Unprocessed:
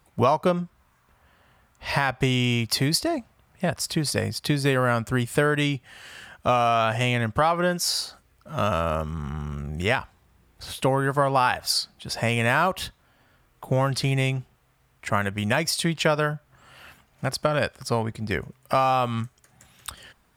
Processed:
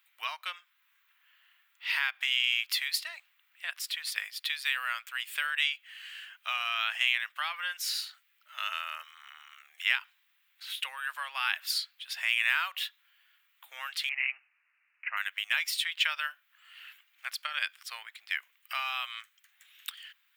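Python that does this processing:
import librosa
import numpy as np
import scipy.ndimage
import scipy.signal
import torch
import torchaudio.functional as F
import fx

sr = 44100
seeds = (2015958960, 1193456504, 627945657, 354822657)

y = fx.resample_bad(x, sr, factor=8, down='none', up='filtered', at=(14.09, 15.17))
y = scipy.signal.sosfilt(scipy.signal.bessel(4, 2700.0, 'highpass', norm='mag', fs=sr, output='sos'), y)
y = fx.band_shelf(y, sr, hz=7400.0, db=-14.0, octaves=1.7)
y = y * 10.0 ** (5.0 / 20.0)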